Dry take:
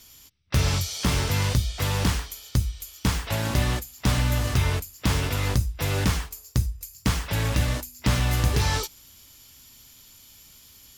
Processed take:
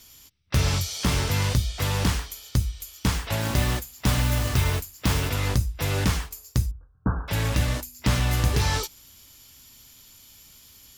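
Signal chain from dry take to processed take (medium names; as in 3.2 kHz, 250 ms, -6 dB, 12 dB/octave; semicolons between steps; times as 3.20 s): 3.40–5.30 s: modulation noise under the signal 16 dB; 6.71–7.28 s: Chebyshev low-pass 1.6 kHz, order 8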